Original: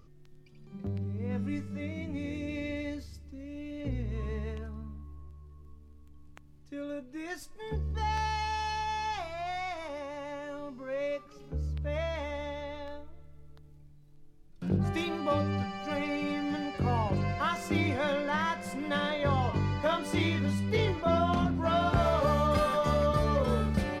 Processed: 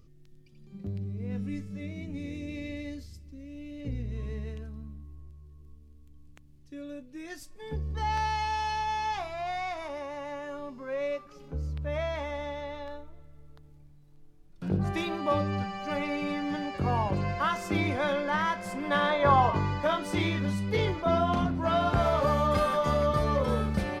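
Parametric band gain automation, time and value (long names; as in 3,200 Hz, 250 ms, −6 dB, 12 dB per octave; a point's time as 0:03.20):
parametric band 1,000 Hz 1.8 octaves
0:07.20 −8.5 dB
0:08.16 +3 dB
0:18.58 +3 dB
0:19.37 +12.5 dB
0:19.87 +2 dB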